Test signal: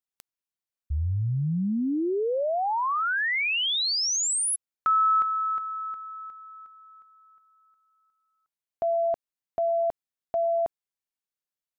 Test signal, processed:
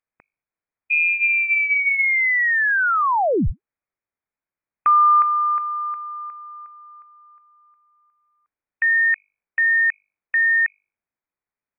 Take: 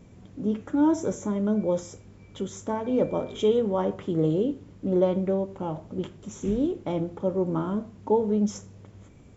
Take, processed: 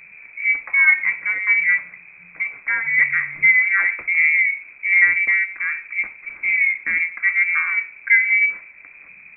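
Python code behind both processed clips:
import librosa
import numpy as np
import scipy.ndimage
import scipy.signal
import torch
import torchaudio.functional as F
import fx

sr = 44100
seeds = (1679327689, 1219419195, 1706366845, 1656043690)

y = fx.hum_notches(x, sr, base_hz=50, count=6)
y = fx.freq_invert(y, sr, carrier_hz=2500)
y = y * librosa.db_to_amplitude(7.5)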